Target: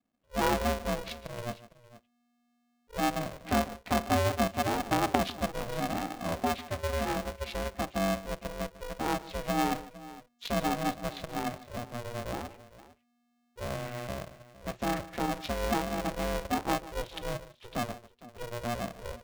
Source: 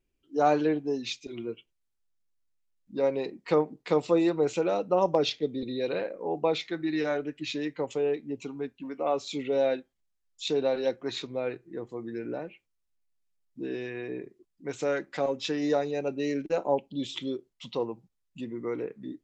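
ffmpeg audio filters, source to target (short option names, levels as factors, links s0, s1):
-filter_complex "[0:a]adynamicequalizer=threshold=0.0141:dfrequency=420:dqfactor=0.86:tfrequency=420:tqfactor=0.86:attack=5:release=100:ratio=0.375:range=2:mode=boostabove:tftype=bell,asplit=2[s0][s1];[s1]acompressor=threshold=0.0282:ratio=6,volume=1.12[s2];[s0][s2]amix=inputs=2:normalize=0,aeval=exprs='0.501*(cos(1*acos(clip(val(0)/0.501,-1,1)))-cos(1*PI/2))+0.178*(cos(3*acos(clip(val(0)/0.501,-1,1)))-cos(3*PI/2))+0.0891*(cos(5*acos(clip(val(0)/0.501,-1,1)))-cos(5*PI/2))+0.0251*(cos(7*acos(clip(val(0)/0.501,-1,1)))-cos(7*PI/2))':c=same,adynamicsmooth=sensitivity=4:basefreq=2000,asplit=2[s3][s4];[s4]aecho=0:1:42|149|459:0.112|0.141|0.133[s5];[s3][s5]amix=inputs=2:normalize=0,aeval=exprs='val(0)*sgn(sin(2*PI*240*n/s))':c=same,volume=0.708"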